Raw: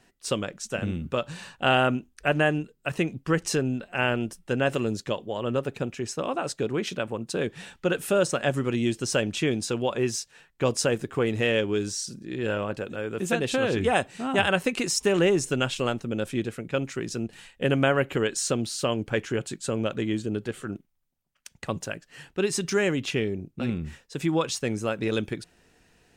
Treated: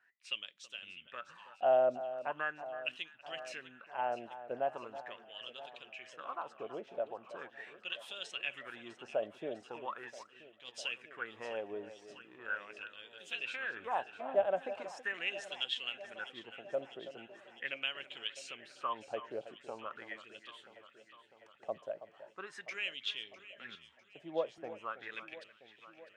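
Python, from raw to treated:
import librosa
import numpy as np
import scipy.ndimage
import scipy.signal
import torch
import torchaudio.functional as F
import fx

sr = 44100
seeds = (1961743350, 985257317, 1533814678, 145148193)

y = fx.wah_lfo(x, sr, hz=0.4, low_hz=610.0, high_hz=3400.0, q=7.1)
y = fx.echo_alternate(y, sr, ms=326, hz=2000.0, feedback_pct=80, wet_db=-13.0)
y = fx.transient(y, sr, attack_db=-10, sustain_db=-6, at=(10.02, 10.74))
y = fx.band_widen(y, sr, depth_pct=40, at=(23.75, 24.58))
y = F.gain(torch.from_numpy(y), 1.0).numpy()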